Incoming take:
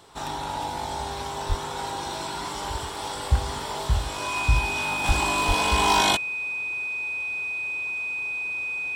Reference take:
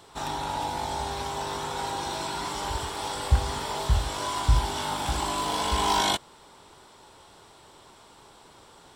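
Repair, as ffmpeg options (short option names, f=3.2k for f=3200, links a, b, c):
-filter_complex "[0:a]bandreject=f=2.5k:w=30,asplit=3[a][b][c];[a]afade=t=out:st=1.48:d=0.02[d];[b]highpass=f=140:w=0.5412,highpass=f=140:w=1.3066,afade=t=in:st=1.48:d=0.02,afade=t=out:st=1.6:d=0.02[e];[c]afade=t=in:st=1.6:d=0.02[f];[d][e][f]amix=inputs=3:normalize=0,asplit=3[g][h][i];[g]afade=t=out:st=5.07:d=0.02[j];[h]highpass=f=140:w=0.5412,highpass=f=140:w=1.3066,afade=t=in:st=5.07:d=0.02,afade=t=out:st=5.19:d=0.02[k];[i]afade=t=in:st=5.19:d=0.02[l];[j][k][l]amix=inputs=3:normalize=0,asplit=3[m][n][o];[m]afade=t=out:st=5.47:d=0.02[p];[n]highpass=f=140:w=0.5412,highpass=f=140:w=1.3066,afade=t=in:st=5.47:d=0.02,afade=t=out:st=5.59:d=0.02[q];[o]afade=t=in:st=5.59:d=0.02[r];[p][q][r]amix=inputs=3:normalize=0,asetnsamples=n=441:p=0,asendcmd='5.04 volume volume -3.5dB',volume=0dB"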